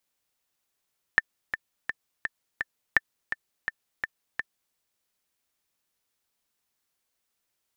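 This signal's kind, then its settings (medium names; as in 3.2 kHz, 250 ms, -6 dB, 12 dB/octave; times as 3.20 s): metronome 168 bpm, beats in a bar 5, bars 2, 1.78 kHz, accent 10 dB -5 dBFS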